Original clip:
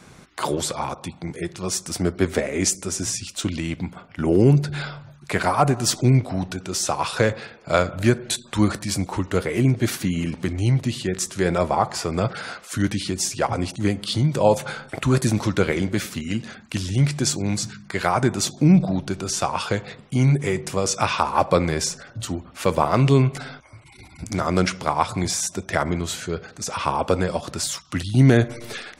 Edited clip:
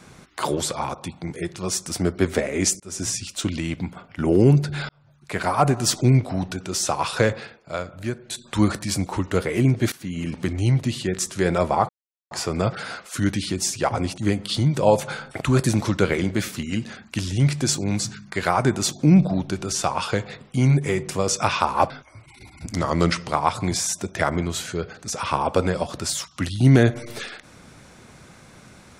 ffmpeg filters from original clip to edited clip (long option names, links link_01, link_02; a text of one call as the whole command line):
ffmpeg -i in.wav -filter_complex "[0:a]asplit=10[link_01][link_02][link_03][link_04][link_05][link_06][link_07][link_08][link_09][link_10];[link_01]atrim=end=2.8,asetpts=PTS-STARTPTS,afade=type=out:start_time=2.796:duration=0.004:curve=hsin[link_11];[link_02]atrim=start=2.8:end=4.89,asetpts=PTS-STARTPTS,afade=type=in:duration=0.25,afade=type=out:start_time=2.086:duration=0.004:curve=hsin[link_12];[link_03]atrim=start=4.89:end=7.64,asetpts=PTS-STARTPTS,afade=type=in:duration=0.76,afade=type=out:start_time=2.44:duration=0.31:curve=qsin:silence=0.316228[link_13];[link_04]atrim=start=7.64:end=8.29,asetpts=PTS-STARTPTS,volume=-10dB[link_14];[link_05]atrim=start=8.29:end=9.92,asetpts=PTS-STARTPTS,afade=type=in:duration=0.31:curve=qsin:silence=0.316228,afade=type=out:start_time=1.626:duration=0.004:curve=hsin:silence=0.105925[link_15];[link_06]atrim=start=9.92:end=11.89,asetpts=PTS-STARTPTS,afade=type=in:duration=0.46:silence=0.105925,afade=type=out:start_time=1.966:duration=0.004:curve=hsin,apad=pad_dur=0.42[link_16];[link_07]atrim=start=11.89:end=21.482,asetpts=PTS-STARTPTS,afade=type=in:duration=0.004:curve=hsin[link_17];[link_08]atrim=start=23.478:end=24.314[link_18];[link_09]atrim=start=24.31:end=24.86,asetpts=PTS-STARTPTS,asetrate=41013,aresample=44100[link_19];[link_10]atrim=start=24.856[link_20];[link_11][link_12][link_13][link_14][link_15][link_16][link_17]concat=n=7:v=0:a=1[link_21];[link_21][link_18]acrossfade=duration=0.004:curve1=hsin:curve2=hsin[link_22];[link_22][link_19]acrossfade=duration=0.004:curve1=hsin:curve2=hsin[link_23];[link_23][link_20]acrossfade=duration=0.004:curve1=hsin:curve2=hsin" out.wav